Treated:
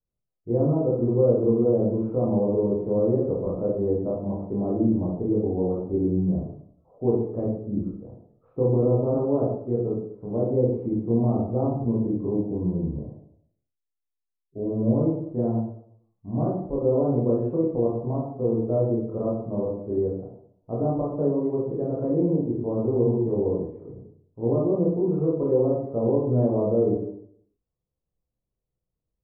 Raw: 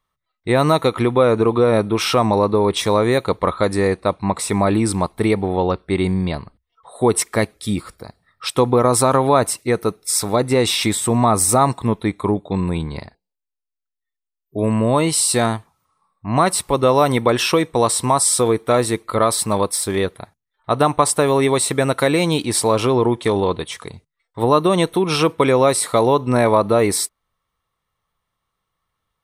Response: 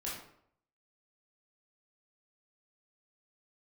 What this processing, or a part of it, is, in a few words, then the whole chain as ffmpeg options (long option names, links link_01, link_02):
next room: -filter_complex "[0:a]lowpass=frequency=570:width=0.5412,lowpass=frequency=570:width=1.3066[link_01];[1:a]atrim=start_sample=2205[link_02];[link_01][link_02]afir=irnorm=-1:irlink=0,volume=-6dB"